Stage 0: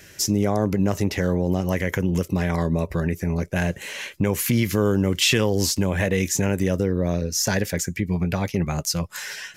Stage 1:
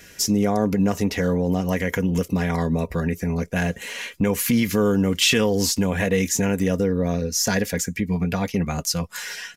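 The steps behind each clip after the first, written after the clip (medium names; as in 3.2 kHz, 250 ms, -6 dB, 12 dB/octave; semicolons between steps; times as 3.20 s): comb 4.2 ms, depth 50%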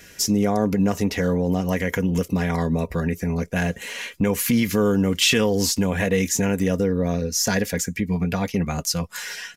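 no audible change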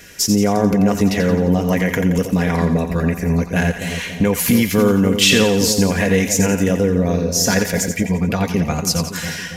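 two-band feedback delay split 760 Hz, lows 280 ms, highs 87 ms, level -8 dB; trim +4.5 dB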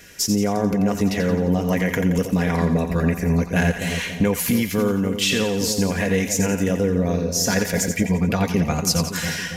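gain riding within 4 dB 0.5 s; trim -4 dB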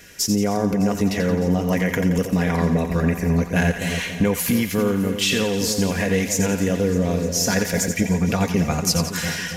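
thinning echo 304 ms, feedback 84%, level -18.5 dB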